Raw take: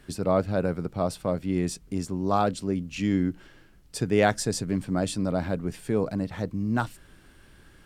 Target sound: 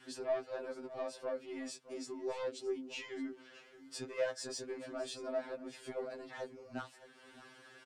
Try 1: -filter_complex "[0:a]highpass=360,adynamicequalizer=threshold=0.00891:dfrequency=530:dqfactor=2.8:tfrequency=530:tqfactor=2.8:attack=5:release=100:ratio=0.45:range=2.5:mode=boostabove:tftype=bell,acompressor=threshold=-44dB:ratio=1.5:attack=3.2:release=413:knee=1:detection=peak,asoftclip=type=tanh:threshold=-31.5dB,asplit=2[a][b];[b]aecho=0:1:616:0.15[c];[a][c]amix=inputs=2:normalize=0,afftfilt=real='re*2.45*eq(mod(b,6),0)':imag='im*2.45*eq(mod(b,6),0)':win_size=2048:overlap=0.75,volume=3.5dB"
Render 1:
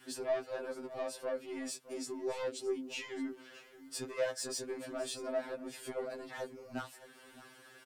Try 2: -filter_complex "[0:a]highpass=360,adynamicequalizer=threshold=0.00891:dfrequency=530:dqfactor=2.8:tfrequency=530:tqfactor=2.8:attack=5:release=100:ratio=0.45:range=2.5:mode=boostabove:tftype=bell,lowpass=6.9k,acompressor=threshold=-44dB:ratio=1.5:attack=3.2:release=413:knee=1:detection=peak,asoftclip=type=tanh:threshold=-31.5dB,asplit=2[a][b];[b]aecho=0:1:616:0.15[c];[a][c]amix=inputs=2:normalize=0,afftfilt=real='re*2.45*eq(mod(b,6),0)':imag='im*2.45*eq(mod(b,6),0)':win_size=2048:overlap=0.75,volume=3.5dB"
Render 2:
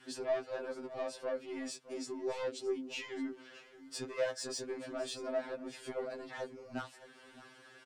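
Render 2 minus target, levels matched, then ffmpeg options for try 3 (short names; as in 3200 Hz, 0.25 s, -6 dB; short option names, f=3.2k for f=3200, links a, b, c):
compressor: peak gain reduction -3 dB
-filter_complex "[0:a]highpass=360,adynamicequalizer=threshold=0.00891:dfrequency=530:dqfactor=2.8:tfrequency=530:tqfactor=2.8:attack=5:release=100:ratio=0.45:range=2.5:mode=boostabove:tftype=bell,lowpass=6.9k,acompressor=threshold=-53dB:ratio=1.5:attack=3.2:release=413:knee=1:detection=peak,asoftclip=type=tanh:threshold=-31.5dB,asplit=2[a][b];[b]aecho=0:1:616:0.15[c];[a][c]amix=inputs=2:normalize=0,afftfilt=real='re*2.45*eq(mod(b,6),0)':imag='im*2.45*eq(mod(b,6),0)':win_size=2048:overlap=0.75,volume=3.5dB"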